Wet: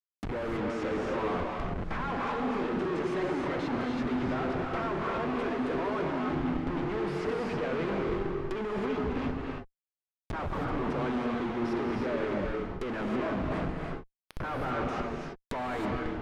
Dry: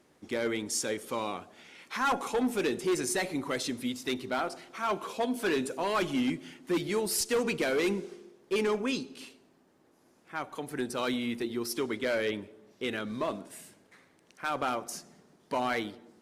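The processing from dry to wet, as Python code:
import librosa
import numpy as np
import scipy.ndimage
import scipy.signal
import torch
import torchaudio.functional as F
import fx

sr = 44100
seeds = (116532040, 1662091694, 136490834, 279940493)

y = fx.schmitt(x, sr, flips_db=-45.0)
y = fx.env_lowpass_down(y, sr, base_hz=1700.0, full_db=-32.0)
y = fx.rev_gated(y, sr, seeds[0], gate_ms=350, shape='rising', drr_db=0.5)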